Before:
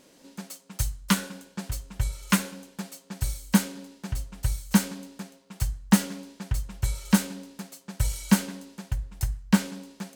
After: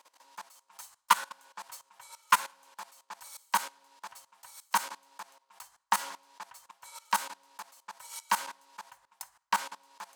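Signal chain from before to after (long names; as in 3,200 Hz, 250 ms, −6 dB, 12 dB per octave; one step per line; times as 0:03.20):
output level in coarse steps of 19 dB
high-pass with resonance 960 Hz, resonance Q 4.9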